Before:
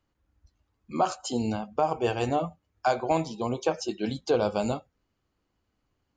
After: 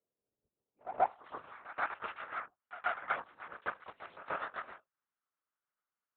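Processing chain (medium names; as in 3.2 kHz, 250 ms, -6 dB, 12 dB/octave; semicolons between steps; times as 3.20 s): in parallel at +0.5 dB: compression, threshold -34 dBFS, peak gain reduction 14.5 dB; on the sum: Chebyshev shaper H 4 -10 dB, 7 -14 dB, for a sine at -9.5 dBFS; LPC vocoder at 8 kHz whisper; band-pass sweep 470 Hz -> 1.4 kHz, 0.73–1.43 s; pre-echo 132 ms -14 dB; trim -5.5 dB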